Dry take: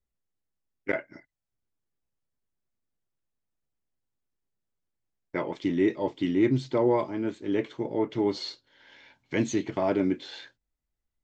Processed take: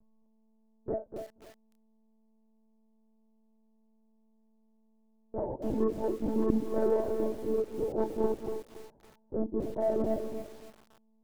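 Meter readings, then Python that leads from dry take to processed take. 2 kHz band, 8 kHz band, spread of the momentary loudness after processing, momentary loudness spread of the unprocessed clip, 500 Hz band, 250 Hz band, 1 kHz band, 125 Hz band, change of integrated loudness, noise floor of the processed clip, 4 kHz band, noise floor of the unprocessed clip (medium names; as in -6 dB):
under -15 dB, no reading, 15 LU, 11 LU, -1.5 dB, -6.0 dB, -5.0 dB, -8.0 dB, -4.0 dB, -67 dBFS, under -15 dB, -85 dBFS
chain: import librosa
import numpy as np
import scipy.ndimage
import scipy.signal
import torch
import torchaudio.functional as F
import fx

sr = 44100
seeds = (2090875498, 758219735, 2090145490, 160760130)

p1 = scipy.signal.sosfilt(scipy.signal.butter(6, 800.0, 'lowpass', fs=sr, output='sos'), x)
p2 = fx.low_shelf(p1, sr, hz=380.0, db=-5.5)
p3 = fx.chorus_voices(p2, sr, voices=4, hz=0.97, base_ms=30, depth_ms=3.0, mix_pct=40)
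p4 = fx.dmg_buzz(p3, sr, base_hz=100.0, harmonics=11, level_db=-68.0, tilt_db=-9, odd_only=False)
p5 = 10.0 ** (-21.5 / 20.0) * np.tanh(p4 / 10.0 ** (-21.5 / 20.0))
p6 = p5 + fx.echo_single(p5, sr, ms=245, db=-8.5, dry=0)
p7 = fx.lpc_monotone(p6, sr, seeds[0], pitch_hz=220.0, order=16)
p8 = fx.echo_crushed(p7, sr, ms=280, feedback_pct=35, bits=8, wet_db=-11.0)
y = F.gain(torch.from_numpy(p8), 3.0).numpy()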